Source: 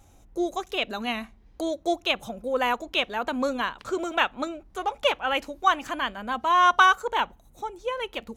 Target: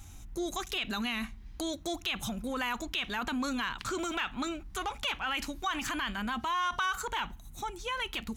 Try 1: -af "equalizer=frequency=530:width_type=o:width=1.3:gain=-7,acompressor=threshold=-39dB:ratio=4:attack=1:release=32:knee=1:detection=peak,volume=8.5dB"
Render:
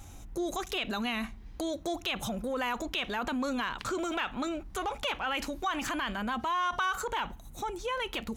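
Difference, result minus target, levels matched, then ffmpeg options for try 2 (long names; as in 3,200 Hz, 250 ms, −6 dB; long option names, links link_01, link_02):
500 Hz band +4.0 dB
-af "equalizer=frequency=530:width_type=o:width=1.3:gain=-18.5,acompressor=threshold=-39dB:ratio=4:attack=1:release=32:knee=1:detection=peak,volume=8.5dB"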